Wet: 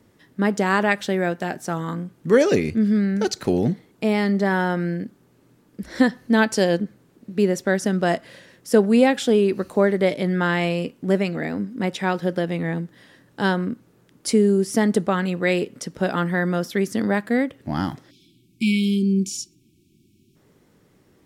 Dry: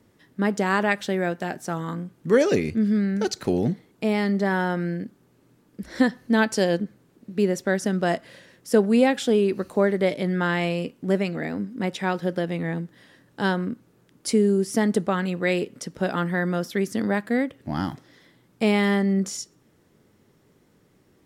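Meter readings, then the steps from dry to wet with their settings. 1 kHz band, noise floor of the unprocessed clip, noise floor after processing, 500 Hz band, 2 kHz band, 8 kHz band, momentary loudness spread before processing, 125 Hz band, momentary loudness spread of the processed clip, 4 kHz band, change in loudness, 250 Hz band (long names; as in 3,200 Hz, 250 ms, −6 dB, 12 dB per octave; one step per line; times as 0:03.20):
+2.5 dB, −61 dBFS, −59 dBFS, +2.5 dB, +2.0 dB, +2.5 dB, 10 LU, +2.5 dB, 12 LU, +2.5 dB, +2.5 dB, +2.5 dB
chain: time-frequency box erased 0:18.10–0:20.36, 400–2,200 Hz
level +2.5 dB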